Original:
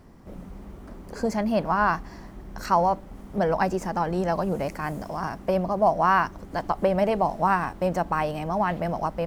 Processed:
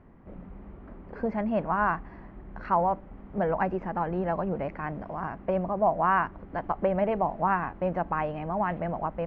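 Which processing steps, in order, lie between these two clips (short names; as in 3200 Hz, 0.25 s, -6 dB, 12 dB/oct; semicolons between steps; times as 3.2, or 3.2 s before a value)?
LPF 2500 Hz 24 dB/oct; gain -3.5 dB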